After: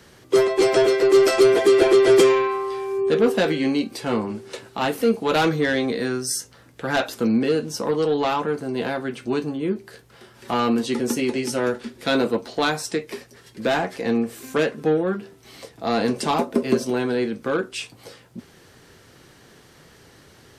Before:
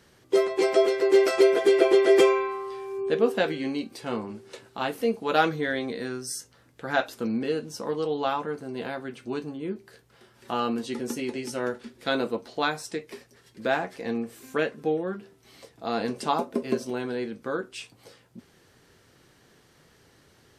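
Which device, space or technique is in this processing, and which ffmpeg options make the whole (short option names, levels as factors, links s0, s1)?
one-band saturation: -filter_complex "[0:a]acrossover=split=330|3900[s0][s1][s2];[s1]asoftclip=type=tanh:threshold=0.0501[s3];[s0][s3][s2]amix=inputs=3:normalize=0,volume=2.66"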